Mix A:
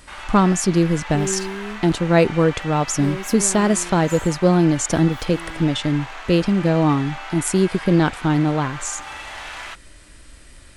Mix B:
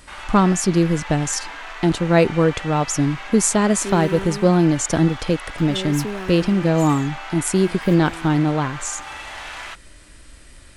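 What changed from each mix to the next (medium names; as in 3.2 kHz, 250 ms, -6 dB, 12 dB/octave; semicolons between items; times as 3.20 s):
second sound: entry +2.70 s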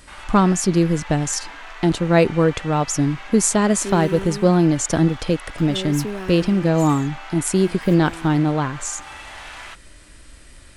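first sound -3.5 dB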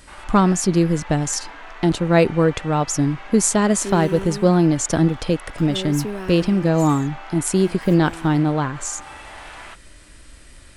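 first sound: add tilt EQ -2.5 dB/octave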